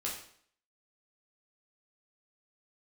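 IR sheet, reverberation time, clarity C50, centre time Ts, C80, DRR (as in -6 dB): 0.60 s, 5.0 dB, 34 ms, 8.5 dB, -4.0 dB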